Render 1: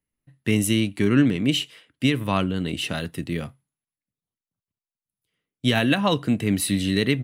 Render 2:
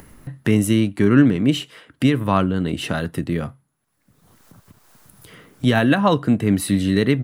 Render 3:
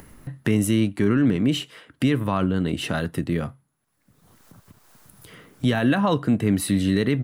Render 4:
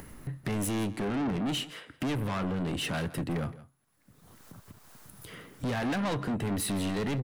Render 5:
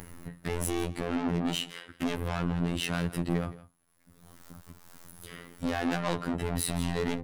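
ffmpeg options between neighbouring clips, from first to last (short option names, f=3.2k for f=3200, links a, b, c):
-af "highshelf=f=1.9k:t=q:w=1.5:g=-6,acompressor=mode=upward:threshold=-23dB:ratio=2.5,volume=4.5dB"
-af "alimiter=limit=-9.5dB:level=0:latency=1:release=31,volume=-1.5dB"
-af "asoftclip=type=tanh:threshold=-28dB,aecho=1:1:167:0.133"
-af "afftfilt=real='hypot(re,im)*cos(PI*b)':imag='0':win_size=2048:overlap=0.75,volume=4dB"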